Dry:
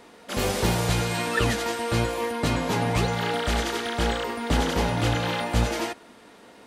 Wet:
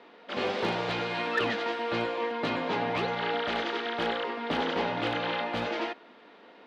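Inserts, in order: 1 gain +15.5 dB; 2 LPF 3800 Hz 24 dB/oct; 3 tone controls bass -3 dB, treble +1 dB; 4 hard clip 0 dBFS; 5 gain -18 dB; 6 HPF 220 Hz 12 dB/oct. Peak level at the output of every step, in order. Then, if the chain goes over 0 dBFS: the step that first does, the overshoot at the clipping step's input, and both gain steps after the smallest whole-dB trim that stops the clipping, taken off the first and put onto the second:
+6.0, +5.5, +4.5, 0.0, -18.0, -15.5 dBFS; step 1, 4.5 dB; step 1 +10.5 dB, step 5 -13 dB

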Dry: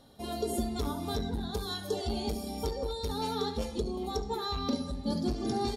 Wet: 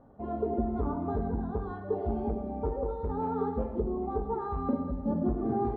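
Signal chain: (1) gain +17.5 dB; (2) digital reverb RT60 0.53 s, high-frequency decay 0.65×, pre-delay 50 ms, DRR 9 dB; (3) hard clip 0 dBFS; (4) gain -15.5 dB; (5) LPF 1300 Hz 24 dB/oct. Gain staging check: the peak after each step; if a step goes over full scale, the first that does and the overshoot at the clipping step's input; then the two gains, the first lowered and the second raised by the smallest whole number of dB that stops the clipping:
-2.0, -2.0, -2.0, -17.5, -18.0 dBFS; no overload

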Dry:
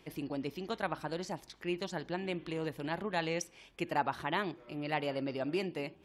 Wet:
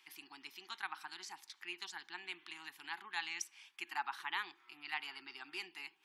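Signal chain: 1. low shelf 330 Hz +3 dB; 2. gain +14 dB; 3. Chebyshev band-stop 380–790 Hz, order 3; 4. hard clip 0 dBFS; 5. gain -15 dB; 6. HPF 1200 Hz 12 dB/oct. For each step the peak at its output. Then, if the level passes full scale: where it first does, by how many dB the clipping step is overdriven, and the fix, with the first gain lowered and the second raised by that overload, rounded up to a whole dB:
-17.0, -3.0, -5.0, -5.0, -20.0, -23.5 dBFS; no overload

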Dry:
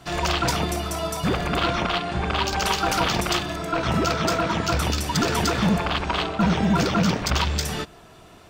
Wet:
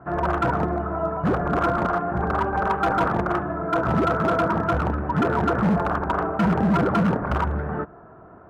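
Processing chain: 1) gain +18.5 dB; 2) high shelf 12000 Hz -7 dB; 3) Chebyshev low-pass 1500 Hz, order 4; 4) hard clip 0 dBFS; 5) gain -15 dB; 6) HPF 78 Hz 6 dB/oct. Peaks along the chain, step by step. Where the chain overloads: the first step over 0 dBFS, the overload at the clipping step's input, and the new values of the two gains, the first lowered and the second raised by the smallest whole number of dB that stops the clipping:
+7.5, +7.5, +7.0, 0.0, -15.0, -12.0 dBFS; step 1, 7.0 dB; step 1 +11.5 dB, step 5 -8 dB

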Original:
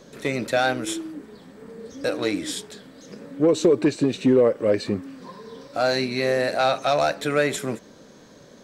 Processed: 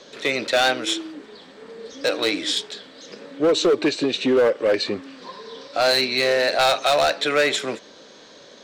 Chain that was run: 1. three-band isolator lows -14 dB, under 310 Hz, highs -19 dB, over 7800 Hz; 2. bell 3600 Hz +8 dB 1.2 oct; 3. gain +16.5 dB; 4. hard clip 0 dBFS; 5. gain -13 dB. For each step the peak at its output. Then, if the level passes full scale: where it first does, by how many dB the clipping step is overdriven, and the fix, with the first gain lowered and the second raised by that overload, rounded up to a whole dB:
-9.5, -7.5, +9.0, 0.0, -13.0 dBFS; step 3, 9.0 dB; step 3 +7.5 dB, step 5 -4 dB

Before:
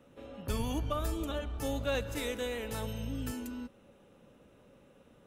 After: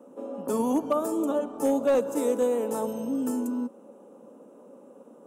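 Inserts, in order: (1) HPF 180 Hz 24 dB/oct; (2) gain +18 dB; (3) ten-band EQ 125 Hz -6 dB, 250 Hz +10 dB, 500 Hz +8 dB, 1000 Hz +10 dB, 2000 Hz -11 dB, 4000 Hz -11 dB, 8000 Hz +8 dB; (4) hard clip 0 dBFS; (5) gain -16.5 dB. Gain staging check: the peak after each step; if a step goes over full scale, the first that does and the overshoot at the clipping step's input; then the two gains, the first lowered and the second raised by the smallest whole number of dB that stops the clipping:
-22.0, -4.0, +4.5, 0.0, -16.5 dBFS; step 3, 4.5 dB; step 2 +13 dB, step 5 -11.5 dB

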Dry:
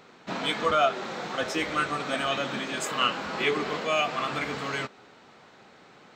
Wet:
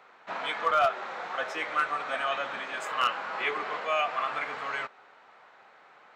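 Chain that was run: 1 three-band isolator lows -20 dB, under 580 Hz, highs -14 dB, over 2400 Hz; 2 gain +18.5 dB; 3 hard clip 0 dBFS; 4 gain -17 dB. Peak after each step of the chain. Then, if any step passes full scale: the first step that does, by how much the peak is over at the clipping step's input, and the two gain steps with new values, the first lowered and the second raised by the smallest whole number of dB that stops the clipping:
-13.0, +5.5, 0.0, -17.0 dBFS; step 2, 5.5 dB; step 2 +12.5 dB, step 4 -11 dB

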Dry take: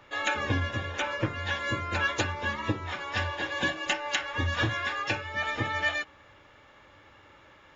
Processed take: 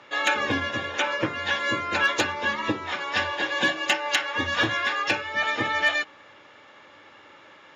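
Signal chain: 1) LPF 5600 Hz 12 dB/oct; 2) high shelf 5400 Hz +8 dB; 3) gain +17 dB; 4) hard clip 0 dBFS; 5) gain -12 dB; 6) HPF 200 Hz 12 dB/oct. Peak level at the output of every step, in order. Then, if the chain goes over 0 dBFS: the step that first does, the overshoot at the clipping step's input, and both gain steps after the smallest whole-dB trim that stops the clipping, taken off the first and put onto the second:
-12.5, -10.0, +7.0, 0.0, -12.0, -9.5 dBFS; step 3, 7.0 dB; step 3 +10 dB, step 5 -5 dB

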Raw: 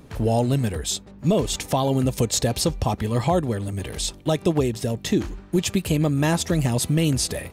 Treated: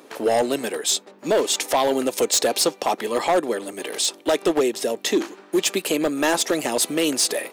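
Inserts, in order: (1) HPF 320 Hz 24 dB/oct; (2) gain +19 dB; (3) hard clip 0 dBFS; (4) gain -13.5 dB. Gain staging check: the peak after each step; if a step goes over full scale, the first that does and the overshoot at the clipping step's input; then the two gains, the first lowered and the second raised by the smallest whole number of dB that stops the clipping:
-10.5, +8.5, 0.0, -13.5 dBFS; step 2, 8.5 dB; step 2 +10 dB, step 4 -4.5 dB

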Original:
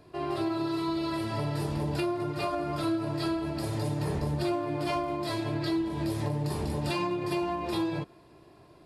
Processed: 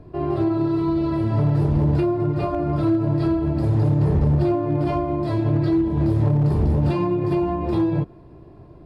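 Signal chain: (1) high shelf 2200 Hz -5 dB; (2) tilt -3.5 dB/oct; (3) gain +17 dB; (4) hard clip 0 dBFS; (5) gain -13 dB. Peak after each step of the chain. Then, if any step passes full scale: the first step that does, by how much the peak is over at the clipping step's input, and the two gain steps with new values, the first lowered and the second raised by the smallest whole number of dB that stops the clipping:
-19.0, -10.5, +6.5, 0.0, -13.0 dBFS; step 3, 6.5 dB; step 3 +10 dB, step 5 -6 dB

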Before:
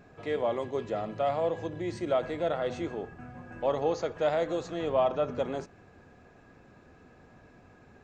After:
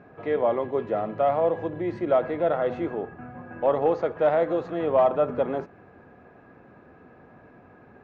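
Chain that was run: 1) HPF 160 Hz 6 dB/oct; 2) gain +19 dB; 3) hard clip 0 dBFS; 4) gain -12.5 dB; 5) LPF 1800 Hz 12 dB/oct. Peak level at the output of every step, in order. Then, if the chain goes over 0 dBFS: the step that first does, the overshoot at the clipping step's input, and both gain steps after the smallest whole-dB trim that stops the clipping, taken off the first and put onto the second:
-15.5, +3.5, 0.0, -12.5, -12.0 dBFS; step 2, 3.5 dB; step 2 +15 dB, step 4 -8.5 dB

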